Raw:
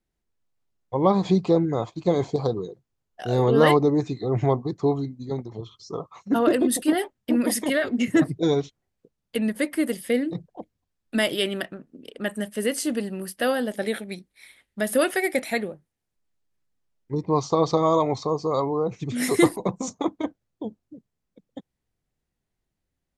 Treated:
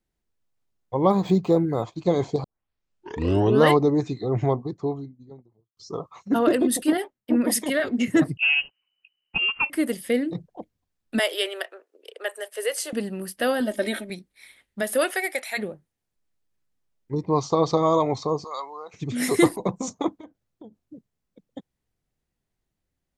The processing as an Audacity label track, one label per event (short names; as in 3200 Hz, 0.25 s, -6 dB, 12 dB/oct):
1.100000	1.830000	decimation joined by straight lines rate divided by 4×
2.440000	2.440000	tape start 1.18 s
4.130000	5.770000	studio fade out
6.970000	7.800000	three-band expander depth 70%
8.370000	9.700000	inverted band carrier 3000 Hz
11.190000	12.930000	steep high-pass 400 Hz 48 dB/oct
13.600000	14.100000	comb 3.2 ms, depth 88%
14.810000	15.570000	HPF 280 Hz -> 970 Hz
18.440000	18.940000	HPF 1200 Hz
20.160000	20.820000	compressor 4:1, threshold -42 dBFS